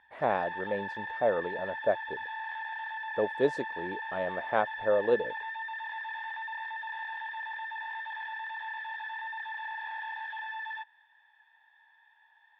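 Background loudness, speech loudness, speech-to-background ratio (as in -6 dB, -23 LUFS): -37.5 LUFS, -31.5 LUFS, 6.0 dB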